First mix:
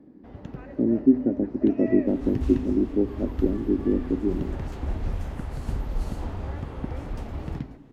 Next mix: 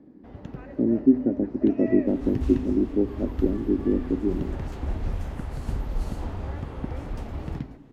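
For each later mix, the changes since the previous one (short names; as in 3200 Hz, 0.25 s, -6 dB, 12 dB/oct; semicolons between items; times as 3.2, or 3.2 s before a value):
none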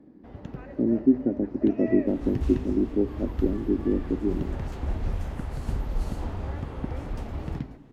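speech: send off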